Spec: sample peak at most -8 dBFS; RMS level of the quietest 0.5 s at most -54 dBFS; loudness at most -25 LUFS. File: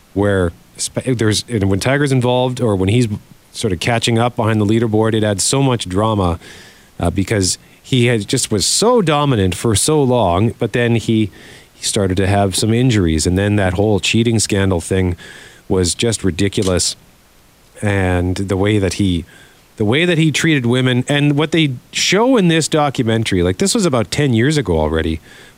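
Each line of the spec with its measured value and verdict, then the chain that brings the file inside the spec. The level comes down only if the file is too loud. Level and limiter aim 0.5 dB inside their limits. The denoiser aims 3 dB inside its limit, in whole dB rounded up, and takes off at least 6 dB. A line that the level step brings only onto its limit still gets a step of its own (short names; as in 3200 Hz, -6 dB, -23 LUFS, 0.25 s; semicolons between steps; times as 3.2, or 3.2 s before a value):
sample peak -4.0 dBFS: fail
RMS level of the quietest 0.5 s -48 dBFS: fail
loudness -15.5 LUFS: fail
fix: gain -10 dB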